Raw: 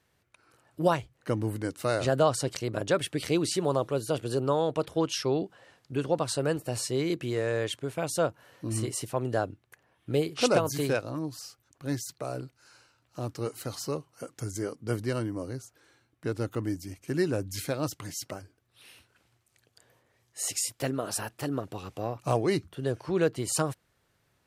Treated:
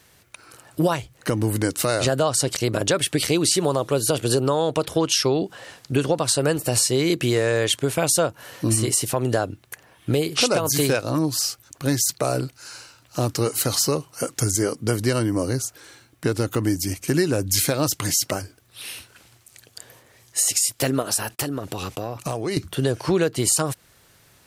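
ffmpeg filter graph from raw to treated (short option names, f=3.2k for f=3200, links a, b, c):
-filter_complex "[0:a]asettb=1/sr,asplit=3[a][b][c];[a]atrim=end=21.024[d];[b]atrim=start=21.02:end=22.57,asetpts=PTS-STARTPTS,afade=t=in:d=0.004:c=qsin,afade=t=out:st=1.546:d=0.004:c=qsin,agate=range=-30dB:threshold=-57dB:ratio=16:release=100:detection=peak,acompressor=threshold=-39dB:ratio=4:attack=3.2:release=140:knee=1:detection=peak[e];[c]atrim=start=22.566[f];[d][e]acrossfade=d=0.004:c1=hsin:c2=qsin[g];[g][f]acrossfade=d=0.004:c1=qsin:c2=hsin,highshelf=f=3.5k:g=9,acompressor=threshold=-30dB:ratio=6,alimiter=level_in=21dB:limit=-1dB:release=50:level=0:latency=1,volume=-7.5dB"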